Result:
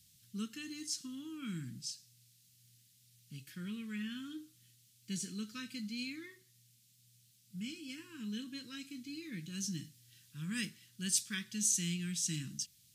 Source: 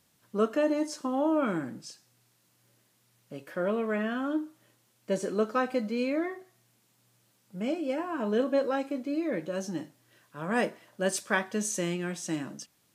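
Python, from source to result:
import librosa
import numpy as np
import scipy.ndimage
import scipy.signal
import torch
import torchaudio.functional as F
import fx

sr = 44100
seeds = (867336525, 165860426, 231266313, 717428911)

p1 = fx.rider(x, sr, range_db=10, speed_s=0.5)
p2 = x + F.gain(torch.from_numpy(p1), 1.0).numpy()
p3 = scipy.signal.sosfilt(scipy.signal.cheby1(2, 1.0, [120.0, 3800.0], 'bandstop', fs=sr, output='sos'), p2)
y = F.gain(torch.from_numpy(p3), -3.5).numpy()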